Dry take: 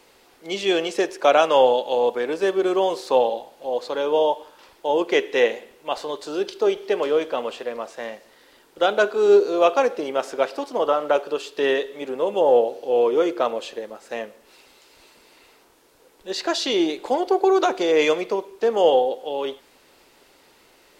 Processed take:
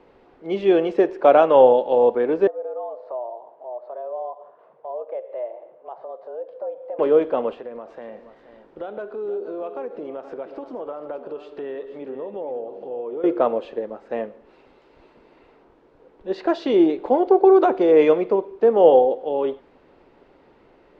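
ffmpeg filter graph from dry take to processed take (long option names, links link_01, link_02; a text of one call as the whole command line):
ffmpeg -i in.wav -filter_complex "[0:a]asettb=1/sr,asplit=3[link_01][link_02][link_03];[link_01]atrim=end=2.474[link_04];[link_02]atrim=start=2.47:end=6.99,asetpts=PTS-STARTPTS,afade=type=in:duration=0.004:curve=qsin,afade=type=out:start_time=4.516:duration=0.004:curve=qsin,afreqshift=120,bandpass=frequency=600:width_type=q:width=1.3,acompressor=threshold=-41dB:ratio=2:attack=3.2:release=140:knee=1:detection=peak[link_05];[link_03]atrim=start=6.986[link_06];[link_04][link_05]acrossfade=duration=0.004:curve1=hsin:curve2=qsin[link_07];[link_07][link_06]acrossfade=duration=0.004:curve1=qsin:curve2=hsin,asettb=1/sr,asplit=3[link_08][link_09][link_10];[link_08]atrim=end=7.544[link_11];[link_09]atrim=start=7.54:end=13.24,asetpts=PTS-STARTPTS,afade=type=in:duration=0.004:curve=qsin,afade=type=out:start_time=5.696:duration=0.004:curve=qsin,acompressor=threshold=-37dB:ratio=3:attack=3.2:release=140:knee=1:detection=peak,aecho=1:1:476:0.251,atrim=end_sample=251370[link_12];[link_10]atrim=start=13.236[link_13];[link_11][link_12]acrossfade=duration=0.004:curve1=hsin:curve2=qsin[link_14];[link_14][link_13]acrossfade=duration=0.004:curve1=qsin:curve2=hsin,lowpass=2700,tiltshelf=frequency=1200:gain=7.5,volume=-1dB" out.wav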